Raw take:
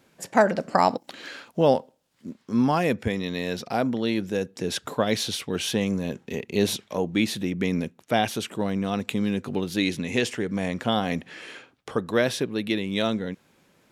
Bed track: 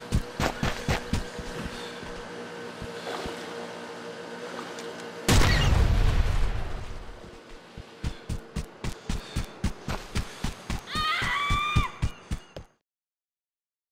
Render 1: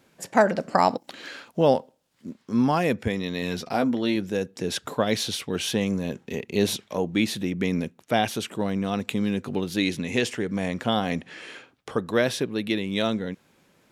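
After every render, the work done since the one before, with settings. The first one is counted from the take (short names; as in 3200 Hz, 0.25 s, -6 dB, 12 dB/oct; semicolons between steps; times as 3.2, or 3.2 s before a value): 3.41–4.16 doubler 12 ms -6 dB; 11.11–11.52 LPF 11000 Hz 24 dB/oct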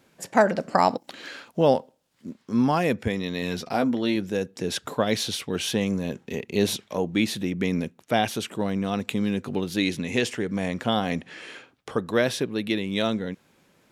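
nothing audible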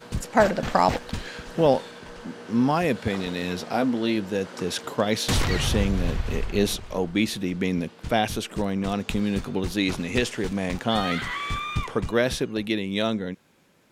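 add bed track -3.5 dB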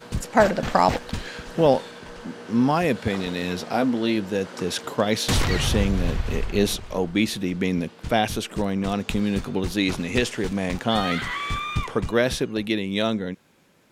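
gain +1.5 dB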